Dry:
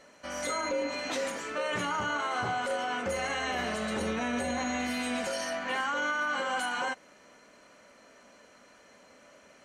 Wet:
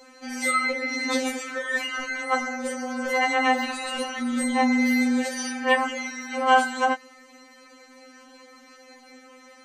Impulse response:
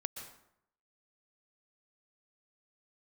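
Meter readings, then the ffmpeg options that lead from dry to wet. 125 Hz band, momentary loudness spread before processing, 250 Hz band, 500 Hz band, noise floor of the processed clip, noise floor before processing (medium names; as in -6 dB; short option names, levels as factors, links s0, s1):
under -10 dB, 4 LU, +10.5 dB, +4.5 dB, -51 dBFS, -58 dBFS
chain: -af "afftfilt=real='re*3.46*eq(mod(b,12),0)':imag='im*3.46*eq(mod(b,12),0)':win_size=2048:overlap=0.75,volume=2.66"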